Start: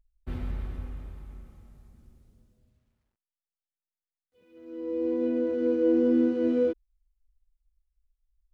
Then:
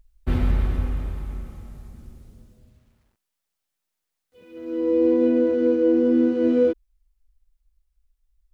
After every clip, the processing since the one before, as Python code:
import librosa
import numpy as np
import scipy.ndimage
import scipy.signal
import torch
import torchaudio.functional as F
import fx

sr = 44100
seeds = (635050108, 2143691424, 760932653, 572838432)

y = fx.rider(x, sr, range_db=5, speed_s=0.5)
y = y * librosa.db_to_amplitude(7.5)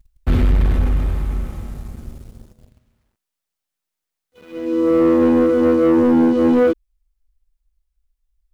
y = fx.dynamic_eq(x, sr, hz=790.0, q=1.0, threshold_db=-35.0, ratio=4.0, max_db=-5)
y = fx.leveller(y, sr, passes=2)
y = y * librosa.db_to_amplitude(2.5)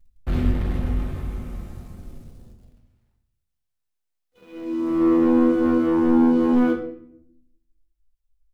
y = fx.room_shoebox(x, sr, seeds[0], volume_m3=150.0, walls='mixed', distance_m=0.85)
y = y * librosa.db_to_amplitude(-8.5)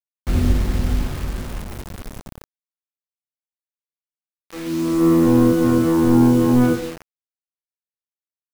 y = fx.octave_divider(x, sr, octaves=1, level_db=-6.0)
y = fx.quant_dither(y, sr, seeds[1], bits=6, dither='none')
y = y * librosa.db_to_amplitude(2.5)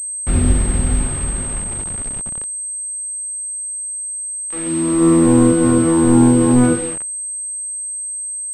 y = fx.pwm(x, sr, carrier_hz=8300.0)
y = y * librosa.db_to_amplitude(2.5)